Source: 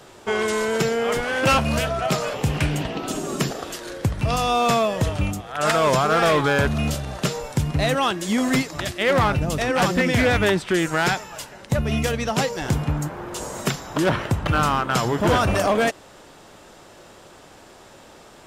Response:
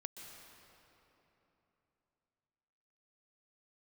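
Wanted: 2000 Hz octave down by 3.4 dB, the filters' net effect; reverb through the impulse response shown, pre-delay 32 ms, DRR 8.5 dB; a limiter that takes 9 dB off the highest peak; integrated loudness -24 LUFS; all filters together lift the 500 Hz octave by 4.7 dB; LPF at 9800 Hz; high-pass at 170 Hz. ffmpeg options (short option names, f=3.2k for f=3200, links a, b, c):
-filter_complex "[0:a]highpass=170,lowpass=9.8k,equalizer=f=500:t=o:g=6,equalizer=f=2k:t=o:g=-5,alimiter=limit=-15.5dB:level=0:latency=1,asplit=2[a][b];[1:a]atrim=start_sample=2205,adelay=32[c];[b][c]afir=irnorm=-1:irlink=0,volume=-5.5dB[d];[a][d]amix=inputs=2:normalize=0,volume=0.5dB"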